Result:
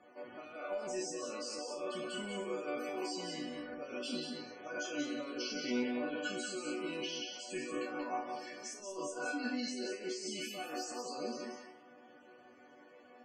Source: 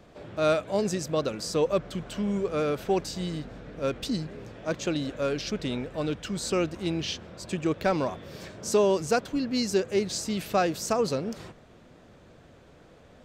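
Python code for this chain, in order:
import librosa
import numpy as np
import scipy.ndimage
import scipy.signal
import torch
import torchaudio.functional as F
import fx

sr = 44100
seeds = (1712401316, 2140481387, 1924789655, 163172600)

y = fx.spec_trails(x, sr, decay_s=0.54)
y = fx.highpass(y, sr, hz=440.0, slope=6)
y = fx.high_shelf(y, sr, hz=8900.0, db=8.0)
y = fx.notch(y, sr, hz=3700.0, q=5.4)
y = fx.over_compress(y, sr, threshold_db=-33.0, ratio=-1.0)
y = fx.resonator_bank(y, sr, root=59, chord='minor', decay_s=0.33)
y = fx.spec_topn(y, sr, count=64)
y = fx.air_absorb(y, sr, metres=62.0)
y = y + 10.0 ** (-5.0 / 20.0) * np.pad(y, (int(182 * sr / 1000.0), 0))[:len(y)]
y = fx.band_squash(y, sr, depth_pct=40, at=(1.58, 3.74))
y = F.gain(torch.from_numpy(y), 11.5).numpy()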